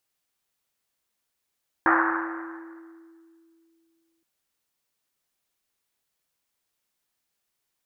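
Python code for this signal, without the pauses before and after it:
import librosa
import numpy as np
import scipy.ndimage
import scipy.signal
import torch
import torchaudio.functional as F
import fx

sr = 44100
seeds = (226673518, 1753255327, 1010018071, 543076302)

y = fx.risset_drum(sr, seeds[0], length_s=2.37, hz=330.0, decay_s=2.92, noise_hz=1300.0, noise_width_hz=940.0, noise_pct=60)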